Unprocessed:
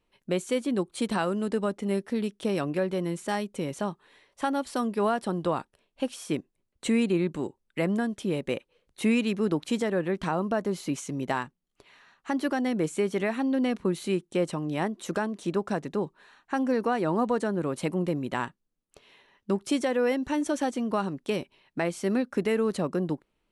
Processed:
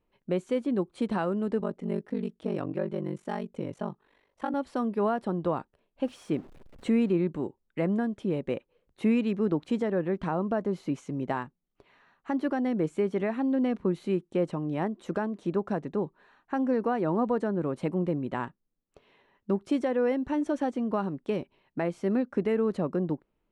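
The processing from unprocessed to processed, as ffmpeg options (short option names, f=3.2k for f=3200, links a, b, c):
-filter_complex "[0:a]asettb=1/sr,asplit=3[a][b][c];[a]atrim=end=1.604[d];[b]atrim=start=1.6:end=4.54,asetpts=PTS-STARTPTS,afade=t=in:d=0.004:c=qsin,afade=t=out:st=2.936:d=0.004:c=qsin,aeval=exprs='val(0)*sin(2*PI*24*n/s)':c=same[e];[c]atrim=start=4.536[f];[d][e]acrossfade=d=0.004:c1=hsin:c2=qsin[g];[g][f]acrossfade=d=0.004:c1=qsin:c2=hsin,asettb=1/sr,asplit=3[h][i][j];[h]atrim=end=6.034[k];[i]atrim=start=6.03:end=7.13,asetpts=PTS-STARTPTS,afade=t=in:d=0.004:c=qsin,afade=t=out:st=1.096:d=0.004:c=qsin,aeval=exprs='val(0)+0.5*0.00668*sgn(val(0))':c=same[l];[j]atrim=start=7.126[m];[k][l]acrossfade=d=0.004:c1=hsin:c2=qsin[n];[n][m]acrossfade=d=0.004:c1=qsin:c2=hsin,lowpass=f=1.1k:p=1"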